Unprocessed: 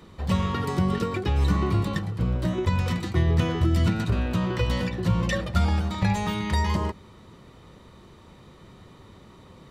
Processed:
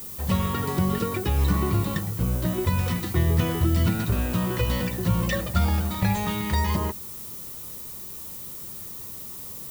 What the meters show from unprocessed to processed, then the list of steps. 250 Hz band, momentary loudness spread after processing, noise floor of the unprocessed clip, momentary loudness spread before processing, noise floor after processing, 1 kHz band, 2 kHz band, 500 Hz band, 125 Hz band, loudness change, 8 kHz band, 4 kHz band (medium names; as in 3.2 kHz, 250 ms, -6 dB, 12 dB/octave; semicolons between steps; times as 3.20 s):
0.0 dB, 12 LU, -50 dBFS, 4 LU, -38 dBFS, 0.0 dB, 0.0 dB, 0.0 dB, 0.0 dB, -0.5 dB, +7.5 dB, +0.5 dB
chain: added noise violet -38 dBFS